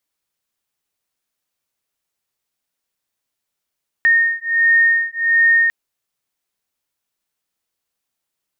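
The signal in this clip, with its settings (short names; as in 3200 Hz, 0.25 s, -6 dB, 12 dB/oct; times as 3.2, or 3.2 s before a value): beating tones 1840 Hz, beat 1.4 Hz, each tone -15 dBFS 1.65 s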